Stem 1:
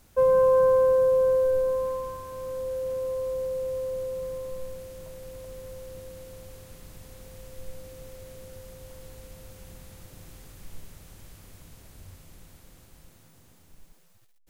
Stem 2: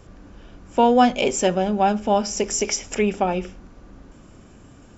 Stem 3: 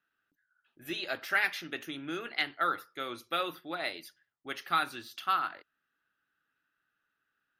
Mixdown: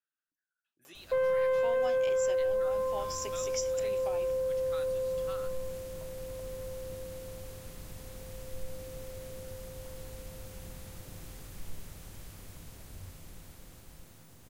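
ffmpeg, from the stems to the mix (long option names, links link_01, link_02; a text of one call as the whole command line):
ffmpeg -i stem1.wav -i stem2.wav -i stem3.wav -filter_complex "[0:a]asoftclip=type=tanh:threshold=-20dB,adelay=950,volume=1dB[link_01];[1:a]highpass=420,highshelf=frequency=4200:gain=12,acompressor=mode=upward:threshold=-36dB:ratio=2.5,adelay=850,volume=-17.5dB[link_02];[2:a]equalizer=frequency=8400:width=0.65:gain=14,volume=-18.5dB,asplit=2[link_03][link_04];[link_04]apad=whole_len=256962[link_05];[link_02][link_05]sidechaincompress=threshold=-54dB:ratio=8:attack=48:release=105[link_06];[link_01][link_06][link_03]amix=inputs=3:normalize=0,acompressor=threshold=-29dB:ratio=2.5" out.wav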